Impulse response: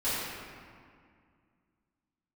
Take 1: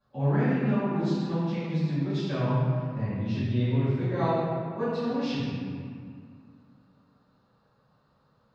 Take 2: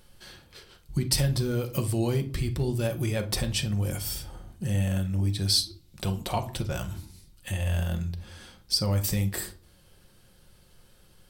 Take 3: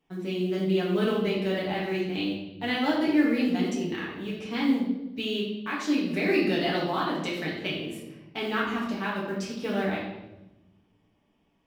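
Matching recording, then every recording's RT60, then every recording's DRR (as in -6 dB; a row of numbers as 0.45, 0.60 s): 1; 2.1, 0.40, 1.0 s; -15.0, 5.5, -6.0 dB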